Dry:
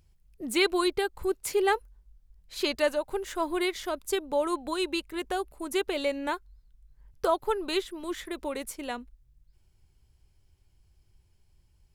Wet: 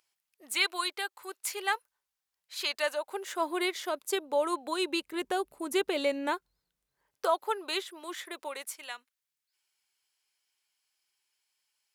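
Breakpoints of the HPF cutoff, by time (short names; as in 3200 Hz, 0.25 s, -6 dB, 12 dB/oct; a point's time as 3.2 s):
2.69 s 980 Hz
3.43 s 380 Hz
4.68 s 380 Hz
5.32 s 150 Hz
6.11 s 150 Hz
7.31 s 580 Hz
8.32 s 580 Hz
8.96 s 1400 Hz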